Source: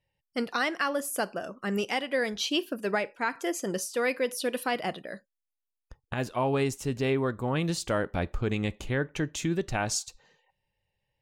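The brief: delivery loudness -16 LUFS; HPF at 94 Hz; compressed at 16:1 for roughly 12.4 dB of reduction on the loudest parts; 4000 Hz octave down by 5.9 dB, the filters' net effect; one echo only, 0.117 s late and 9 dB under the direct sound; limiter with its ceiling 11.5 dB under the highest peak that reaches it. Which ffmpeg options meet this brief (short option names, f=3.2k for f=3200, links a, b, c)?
-af "highpass=94,equalizer=f=4k:t=o:g=-8.5,acompressor=threshold=-36dB:ratio=16,alimiter=level_in=11dB:limit=-24dB:level=0:latency=1,volume=-11dB,aecho=1:1:117:0.355,volume=28.5dB"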